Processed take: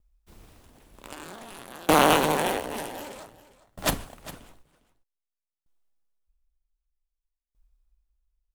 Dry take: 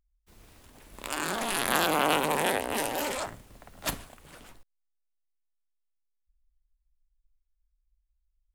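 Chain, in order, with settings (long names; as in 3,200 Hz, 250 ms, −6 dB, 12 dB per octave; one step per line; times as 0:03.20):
in parallel at −5 dB: sample-rate reduction 2,500 Hz, jitter 0%
on the sum: single-tap delay 404 ms −10.5 dB
tremolo with a ramp in dB decaying 0.53 Hz, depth 28 dB
level +6.5 dB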